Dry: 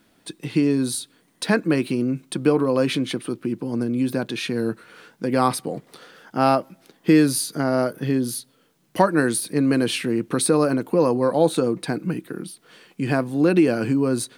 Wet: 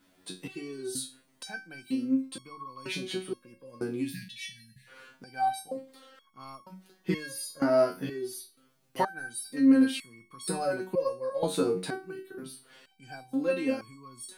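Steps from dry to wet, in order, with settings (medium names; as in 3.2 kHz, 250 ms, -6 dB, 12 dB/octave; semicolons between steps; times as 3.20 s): spectral selection erased 4.02–4.87 s, 220–1600 Hz; hum notches 50/100/150/200/250/300/350 Hz; resonator arpeggio 2.1 Hz 92–1100 Hz; trim +4.5 dB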